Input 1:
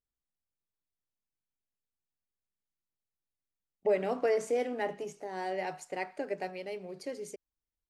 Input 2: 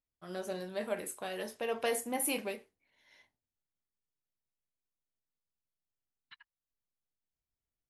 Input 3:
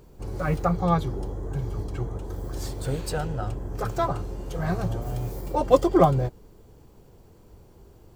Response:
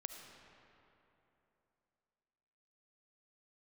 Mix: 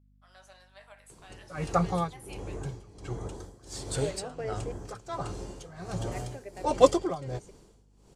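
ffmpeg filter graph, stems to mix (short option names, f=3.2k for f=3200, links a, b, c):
-filter_complex "[0:a]adelay=150,volume=-8.5dB,asplit=3[a][b][c];[a]atrim=end=4.72,asetpts=PTS-STARTPTS,afade=t=out:st=4.716:d=0.004:c=hsin[d];[b]atrim=start=4.72:end=5.85,asetpts=PTS-STARTPTS,volume=0[e];[c]atrim=start=5.85,asetpts=PTS-STARTPTS,afade=t=in:d=0.004:c=hsin[f];[d][e][f]concat=n=3:v=0:a=1[g];[1:a]alimiter=level_in=2.5dB:limit=-24dB:level=0:latency=1:release=308,volume=-2.5dB,highpass=f=750:w=0.5412,highpass=f=750:w=1.3066,volume=-10.5dB,asplit=2[h][i];[i]volume=-5.5dB[j];[2:a]tremolo=f=1.4:d=0.88,highshelf=f=3.5k:g=11,adelay=1100,volume=-1dB[k];[3:a]atrim=start_sample=2205[l];[j][l]afir=irnorm=-1:irlink=0[m];[g][h][k][m]amix=inputs=4:normalize=0,lowpass=f=9.3k:w=0.5412,lowpass=f=9.3k:w=1.3066,lowshelf=f=77:g=-9.5,aeval=exprs='val(0)+0.000891*(sin(2*PI*50*n/s)+sin(2*PI*2*50*n/s)/2+sin(2*PI*3*50*n/s)/3+sin(2*PI*4*50*n/s)/4+sin(2*PI*5*50*n/s)/5)':c=same"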